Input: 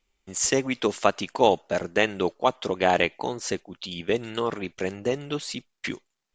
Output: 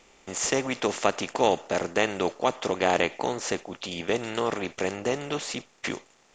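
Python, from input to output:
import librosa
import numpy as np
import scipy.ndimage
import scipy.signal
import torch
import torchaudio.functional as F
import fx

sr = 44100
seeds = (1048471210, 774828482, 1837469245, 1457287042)

y = fx.bin_compress(x, sr, power=0.6)
y = F.gain(torch.from_numpy(y), -5.0).numpy()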